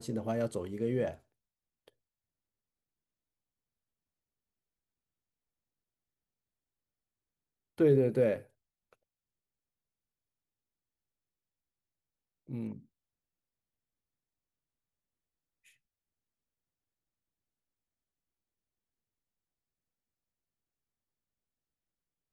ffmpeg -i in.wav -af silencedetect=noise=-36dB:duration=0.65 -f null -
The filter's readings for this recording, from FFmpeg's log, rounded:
silence_start: 1.11
silence_end: 7.80 | silence_duration: 6.69
silence_start: 8.38
silence_end: 12.51 | silence_duration: 4.13
silence_start: 12.73
silence_end: 22.32 | silence_duration: 9.60